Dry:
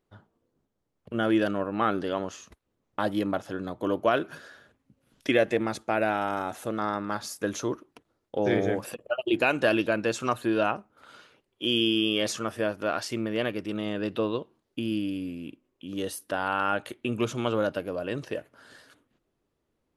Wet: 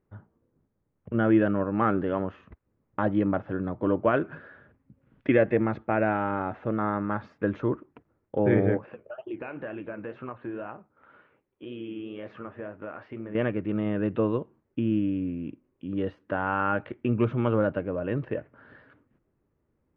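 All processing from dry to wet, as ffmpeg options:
-filter_complex "[0:a]asettb=1/sr,asplit=3[s0][s1][s2];[s0]atrim=end=8.774[s3];[s1]atrim=start=8.77:end=13.35,asetpts=PTS-STARTPTS,afade=t=in:d=0.004:c=qsin,afade=t=out:st=4.576:d=0.004:c=qsin,bass=f=250:g=-6,treble=f=4000:g=-9,acompressor=threshold=0.0224:ratio=2.5:attack=3.2:release=140:knee=1:detection=peak,flanger=delay=6.6:depth=9.9:regen=-61:speed=2:shape=triangular[s4];[s2]atrim=start=13.346[s5];[s3][s4]acrossfade=d=0.004:c1=hsin:c2=qsin[s6];[s6][s5]acrossfade=d=0.004:c1=qsin:c2=hsin,lowpass=f=2200:w=0.5412,lowpass=f=2200:w=1.3066,equalizer=f=95:t=o:w=2.8:g=8,bandreject=f=700:w=17"

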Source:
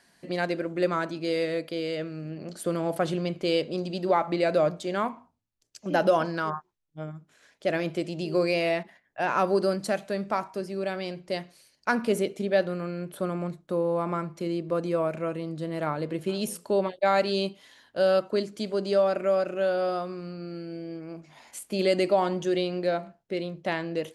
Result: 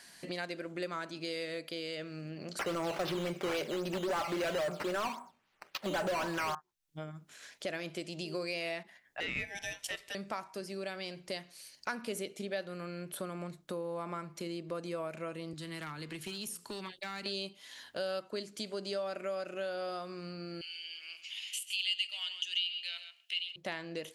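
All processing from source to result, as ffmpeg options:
-filter_complex "[0:a]asettb=1/sr,asplit=3[s0][s1][s2];[s0]atrim=end=2.594[s3];[s1]atrim=start=2.59:end=6.55,asetpts=PTS-STARTPTS,afade=t=in:d=0.004:c=qsin,afade=t=out:st=3.956:d=0.004:c=qsin,aecho=1:1:5.2:0.43,atrim=end_sample=174636,acrusher=samples=9:mix=1:aa=0.000001:lfo=1:lforange=9:lforate=3.7,asplit=2[s4][s5];[s5]highpass=f=720:p=1,volume=20,asoftclip=type=tanh:threshold=0.355[s6];[s4][s6]amix=inputs=2:normalize=0,lowpass=f=1100:p=1,volume=0.501[s7];[s2]atrim=start=6.546[s8];[s3][s7]acrossfade=d=0.004:c1=hsin:c2=qsin[s9];[s9][s8]acrossfade=d=0.004:c1=qsin:c2=hsin,asettb=1/sr,asplit=3[s10][s11][s12];[s10]atrim=end=9.204[s13];[s11]atrim=start=9.2:end=10.15,asetpts=PTS-STARTPTS,afade=t=in:d=0.004:c=qsin,afade=t=out:st=0.946:d=0.004:c=qsin,highpass=f=950:t=q:w=1.5,aeval=exprs='val(0)*sin(2*PI*1200*n/s)':c=same[s14];[s12]atrim=start=10.146[s15];[s13][s14]acrossfade=d=0.004:c1=hsin:c2=qsin[s16];[s16][s15]acrossfade=d=0.004:c1=qsin:c2=hsin,asettb=1/sr,asplit=3[s17][s18][s19];[s17]atrim=end=15.534[s20];[s18]atrim=start=15.53:end=17.26,asetpts=PTS-STARTPTS,afade=t=in:d=0.004:c=qsin,afade=t=out:st=1.726:d=0.004:c=qsin,equalizer=f=580:w=2.1:g=-14.5,acrossover=split=120|360|1300[s21][s22][s23][s24];[s21]acompressor=threshold=0.00355:ratio=3[s25];[s22]acompressor=threshold=0.00708:ratio=3[s26];[s23]acompressor=threshold=0.00708:ratio=3[s27];[s24]acompressor=threshold=0.00631:ratio=3[s28];[s25][s26][s27][s28]amix=inputs=4:normalize=0,volume=37.6,asoftclip=hard,volume=0.0266[s29];[s19]atrim=start=17.256[s30];[s20][s29]acrossfade=d=0.004:c1=hsin:c2=qsin[s31];[s31][s30]acrossfade=d=0.004:c1=qsin:c2=hsin,asettb=1/sr,asplit=3[s32][s33][s34];[s32]atrim=end=20.614[s35];[s33]atrim=start=20.61:end=23.56,asetpts=PTS-STARTPTS,afade=t=in:d=0.004:c=qsin,afade=t=out:st=2.946:d=0.004:c=qsin,highpass=f=2900:t=q:w=13,aecho=1:1:132:0.211,atrim=end_sample=130095[s36];[s34]atrim=start=23.556[s37];[s35][s36]acrossfade=d=0.004:c1=hsin:c2=qsin[s38];[s38][s37]acrossfade=d=0.004:c1=qsin:c2=hsin,tiltshelf=f=1500:g=-5.5,acompressor=threshold=0.00447:ratio=2.5,volume=1.78"

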